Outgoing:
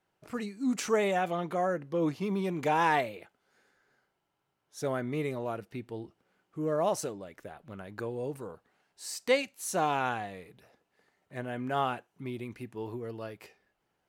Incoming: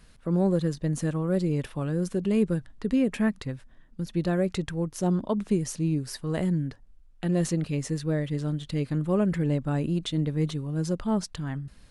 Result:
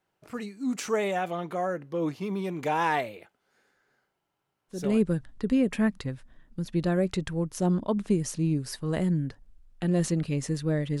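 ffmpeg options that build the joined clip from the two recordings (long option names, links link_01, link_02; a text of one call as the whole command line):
ffmpeg -i cue0.wav -i cue1.wav -filter_complex "[0:a]apad=whole_dur=11,atrim=end=11,atrim=end=5.02,asetpts=PTS-STARTPTS[link_01];[1:a]atrim=start=2.09:end=8.41,asetpts=PTS-STARTPTS[link_02];[link_01][link_02]acrossfade=duration=0.34:curve1=qsin:curve2=qsin" out.wav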